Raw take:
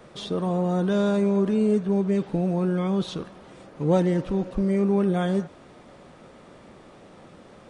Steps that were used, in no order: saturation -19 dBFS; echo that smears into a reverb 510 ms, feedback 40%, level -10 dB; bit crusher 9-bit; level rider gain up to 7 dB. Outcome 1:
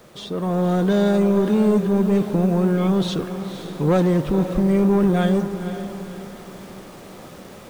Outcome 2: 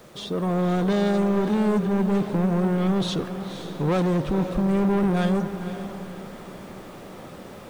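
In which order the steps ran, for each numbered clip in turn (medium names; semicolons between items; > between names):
saturation > bit crusher > level rider > echo that smears into a reverb; level rider > saturation > echo that smears into a reverb > bit crusher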